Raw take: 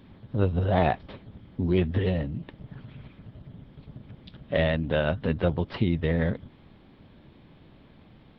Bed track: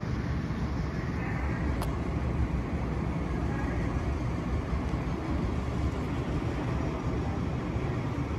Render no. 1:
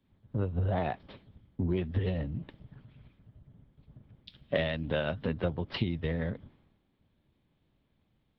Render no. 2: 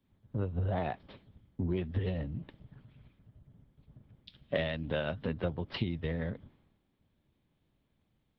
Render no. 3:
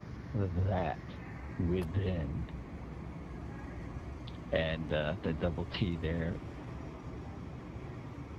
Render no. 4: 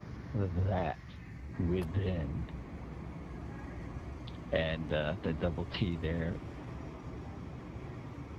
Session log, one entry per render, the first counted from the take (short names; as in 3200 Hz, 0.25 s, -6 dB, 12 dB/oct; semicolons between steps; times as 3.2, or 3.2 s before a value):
compressor 8:1, threshold -28 dBFS, peak gain reduction 11.5 dB; three-band expander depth 100%
gain -2.5 dB
add bed track -13 dB
0.91–1.53 bell 310 Hz -> 1200 Hz -10 dB 2.6 oct